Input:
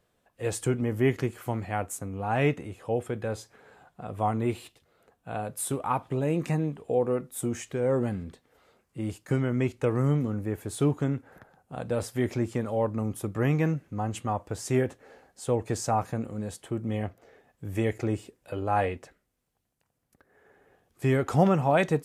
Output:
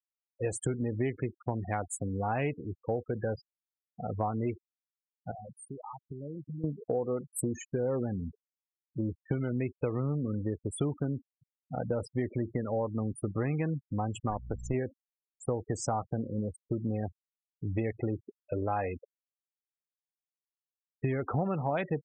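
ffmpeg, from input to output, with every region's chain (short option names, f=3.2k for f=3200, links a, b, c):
-filter_complex "[0:a]asettb=1/sr,asplit=3[a][b][c];[a]atrim=end=5.314[d];[b]atrim=start=5.31:end=6.64,asetpts=PTS-STARTPTS,afade=t=in:d=0.004:c=qsin,afade=t=out:st=1.326:d=0.004:c=qsin,highpass=f=56:p=1,lowshelf=f=170:g=3,acompressor=threshold=-40dB:ratio=8:attack=3.2:release=140:knee=1:detection=peak[e];[c]atrim=start=6.636[f];[d][e]acrossfade=d=0.004:c1=hsin:c2=qsin[g];[g][f]acrossfade=d=0.004:c1=qsin:c2=hsin,asettb=1/sr,asplit=3[h][i][j];[h]atrim=end=14.304[k];[i]atrim=start=14.3:end=14.74,asetpts=PTS-STARTPTS,afade=t=in:d=0.004:c=qsin,afade=t=out:st=0.436:d=0.004:c=qsin,aeval=exprs='if(lt(val(0),0),0.447*val(0),val(0))':c=same,aeval=exprs='val(0)+0.00794*(sin(2*PI*60*n/s)+sin(2*PI*2*60*n/s)/2+sin(2*PI*3*60*n/s)/3+sin(2*PI*4*60*n/s)/4+sin(2*PI*5*60*n/s)/5)':c=same[l];[j]atrim=start=14.736[m];[k][l]acrossfade=d=0.004:c1=hsin:c2=qsin[n];[n][m]acrossfade=d=0.004:c1=qsin:c2=hsin,afftfilt=real='re*gte(hypot(re,im),0.0282)':imag='im*gte(hypot(re,im),0.0282)':win_size=1024:overlap=0.75,acompressor=threshold=-31dB:ratio=6,volume=3dB"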